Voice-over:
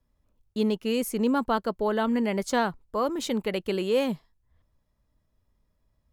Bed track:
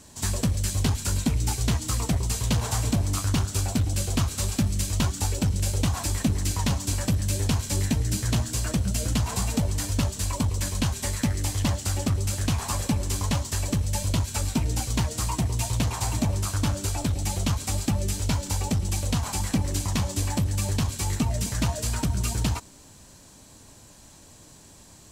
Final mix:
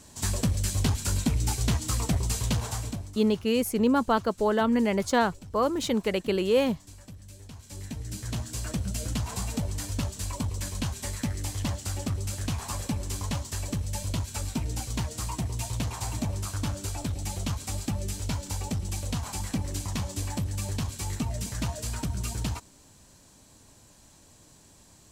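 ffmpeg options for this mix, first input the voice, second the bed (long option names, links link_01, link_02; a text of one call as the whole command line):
ffmpeg -i stem1.wav -i stem2.wav -filter_complex "[0:a]adelay=2600,volume=1.5dB[link_01];[1:a]volume=14.5dB,afade=type=out:start_time=2.38:duration=0.78:silence=0.1,afade=type=in:start_time=7.53:duration=1.2:silence=0.158489[link_02];[link_01][link_02]amix=inputs=2:normalize=0" out.wav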